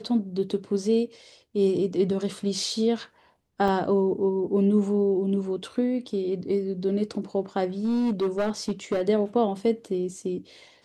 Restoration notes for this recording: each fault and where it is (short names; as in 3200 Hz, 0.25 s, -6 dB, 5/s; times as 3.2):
3.68 gap 3.5 ms
7.84–9.02 clipped -20.5 dBFS